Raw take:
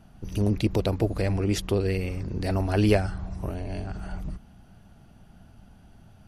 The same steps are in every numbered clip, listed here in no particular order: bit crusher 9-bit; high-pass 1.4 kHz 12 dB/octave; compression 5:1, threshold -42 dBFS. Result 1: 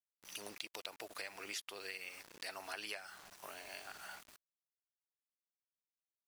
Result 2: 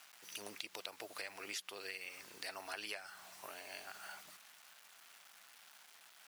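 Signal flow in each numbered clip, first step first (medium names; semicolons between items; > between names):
high-pass > bit crusher > compression; bit crusher > high-pass > compression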